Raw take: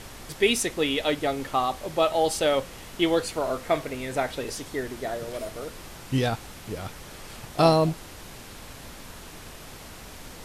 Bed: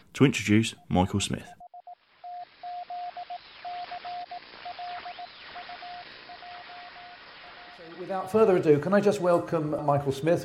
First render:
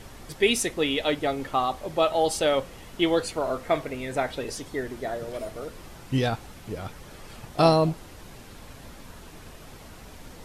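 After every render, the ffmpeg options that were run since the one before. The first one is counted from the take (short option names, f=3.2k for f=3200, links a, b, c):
-af "afftdn=nr=6:nf=-44"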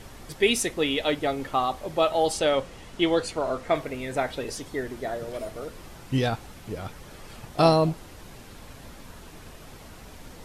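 -filter_complex "[0:a]asettb=1/sr,asplit=3[a][b][c];[a]atrim=end=2.324[d];[b]atrim=start=2.32:end=3.75,asetpts=PTS-STARTPTS,afade=t=in:d=0.004:c=qsin,afade=t=out:st=1.426:d=0.004:c=qsin,lowpass=9.9k[e];[c]atrim=start=3.746[f];[d][e]acrossfade=d=0.004:c1=hsin:c2=qsin[g];[g][f]acrossfade=d=0.004:c1=qsin:c2=hsin"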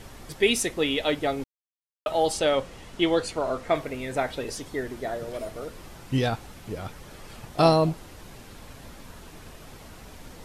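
-filter_complex "[0:a]asplit=3[a][b][c];[a]atrim=end=1.44,asetpts=PTS-STARTPTS,afade=t=out:st=1.436:d=0.004:c=hsin[d];[b]atrim=start=1.44:end=2.06,asetpts=PTS-STARTPTS,volume=0[e];[c]atrim=start=2.06,asetpts=PTS-STARTPTS,afade=t=in:d=0.004:c=hsin[f];[d][e][f]concat=n=3:v=0:a=1"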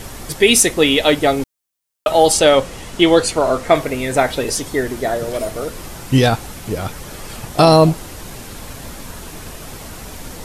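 -filter_complex "[0:a]acrossover=split=6000[a][b];[b]acontrast=55[c];[a][c]amix=inputs=2:normalize=0,alimiter=level_in=11.5dB:limit=-1dB:release=50:level=0:latency=1"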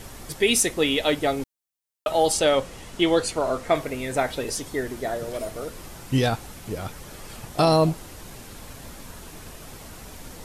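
-af "volume=-8.5dB"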